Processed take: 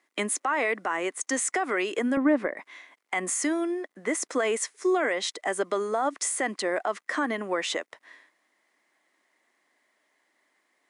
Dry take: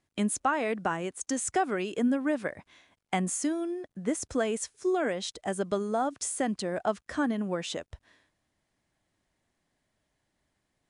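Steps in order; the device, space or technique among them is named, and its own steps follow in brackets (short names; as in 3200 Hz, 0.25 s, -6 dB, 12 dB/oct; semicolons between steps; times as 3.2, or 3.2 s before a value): laptop speaker (HPF 290 Hz 24 dB/oct; bell 1100 Hz +6 dB 0.55 oct; bell 2000 Hz +11 dB 0.34 oct; limiter -22 dBFS, peak gain reduction 11 dB); 2.17–2.57 tilt -4 dB/oct; gain +5 dB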